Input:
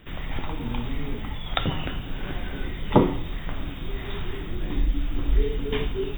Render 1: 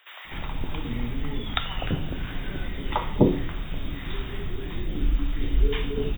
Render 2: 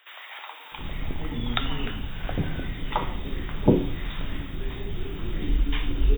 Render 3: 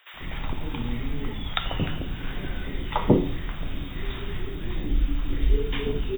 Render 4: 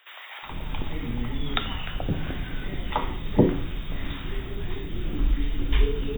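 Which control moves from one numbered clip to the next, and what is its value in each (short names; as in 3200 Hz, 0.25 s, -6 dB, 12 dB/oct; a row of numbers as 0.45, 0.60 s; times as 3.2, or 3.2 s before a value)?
bands offset in time, time: 0.25, 0.72, 0.14, 0.43 s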